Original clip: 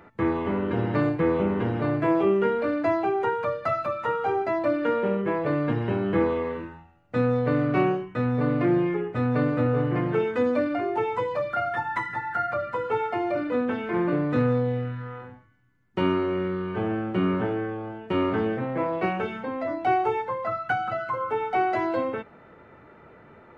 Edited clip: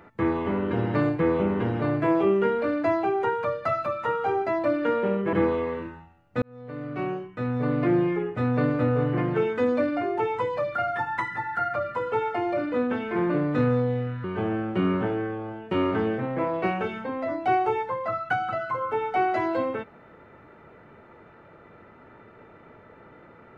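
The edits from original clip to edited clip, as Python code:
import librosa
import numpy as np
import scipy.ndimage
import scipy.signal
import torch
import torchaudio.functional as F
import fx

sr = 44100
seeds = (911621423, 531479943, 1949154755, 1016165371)

y = fx.edit(x, sr, fx.cut(start_s=5.33, length_s=0.78),
    fx.fade_in_span(start_s=7.2, length_s=1.48),
    fx.cut(start_s=15.02, length_s=1.61), tone=tone)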